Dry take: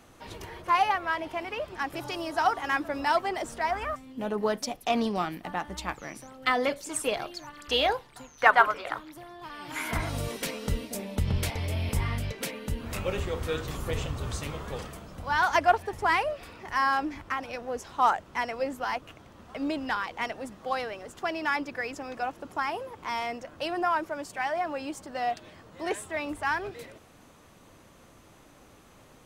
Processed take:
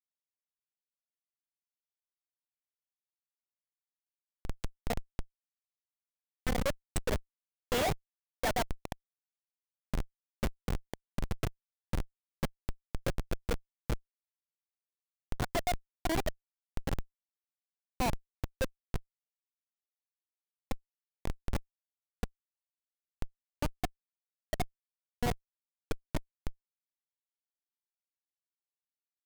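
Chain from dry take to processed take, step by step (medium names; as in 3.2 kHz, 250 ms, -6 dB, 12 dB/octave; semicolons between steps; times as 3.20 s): fade-in on the opening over 7.63 s; static phaser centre 320 Hz, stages 6; Schmitt trigger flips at -25 dBFS; trim +7 dB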